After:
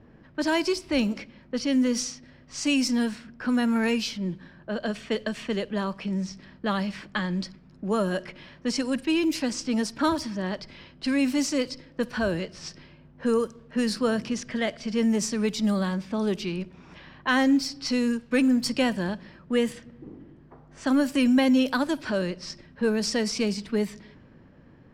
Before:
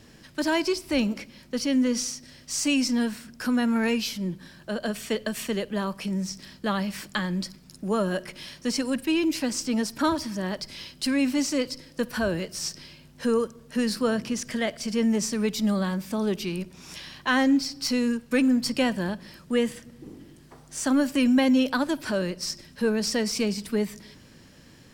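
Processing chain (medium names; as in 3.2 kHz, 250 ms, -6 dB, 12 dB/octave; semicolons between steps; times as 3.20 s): level-controlled noise filter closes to 1.2 kHz, open at -20.5 dBFS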